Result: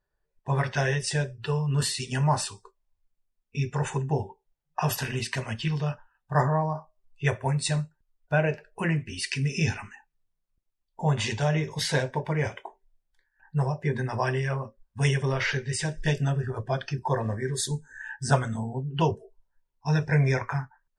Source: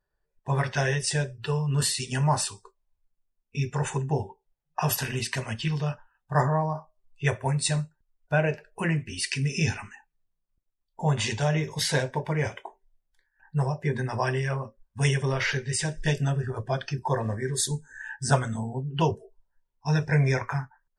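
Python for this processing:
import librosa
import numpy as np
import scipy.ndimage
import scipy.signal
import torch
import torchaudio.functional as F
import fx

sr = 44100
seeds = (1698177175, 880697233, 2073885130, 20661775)

y = fx.high_shelf(x, sr, hz=8100.0, db=-7.5)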